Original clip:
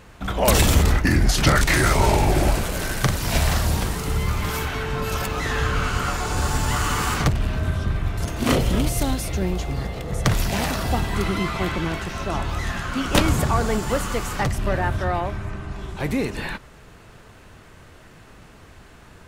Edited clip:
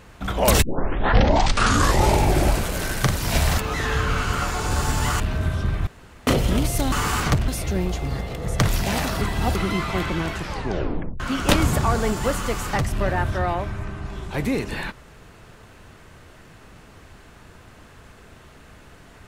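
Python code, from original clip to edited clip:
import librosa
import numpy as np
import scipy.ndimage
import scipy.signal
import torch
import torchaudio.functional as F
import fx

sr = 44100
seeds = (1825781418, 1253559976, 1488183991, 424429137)

y = fx.edit(x, sr, fx.tape_start(start_s=0.62, length_s=1.51),
    fx.cut(start_s=3.58, length_s=1.66),
    fx.move(start_s=6.86, length_s=0.56, to_s=9.14),
    fx.room_tone_fill(start_s=8.09, length_s=0.4),
    fx.reverse_span(start_s=10.87, length_s=0.34),
    fx.tape_stop(start_s=12.03, length_s=0.83), tone=tone)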